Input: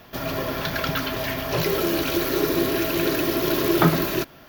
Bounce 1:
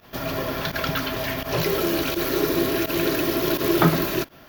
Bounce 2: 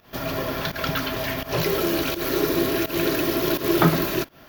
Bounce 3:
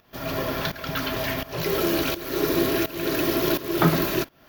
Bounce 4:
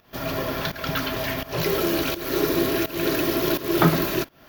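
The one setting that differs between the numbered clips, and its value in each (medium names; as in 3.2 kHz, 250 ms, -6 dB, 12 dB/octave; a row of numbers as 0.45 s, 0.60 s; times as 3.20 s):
volume shaper, release: 67 ms, 149 ms, 495 ms, 303 ms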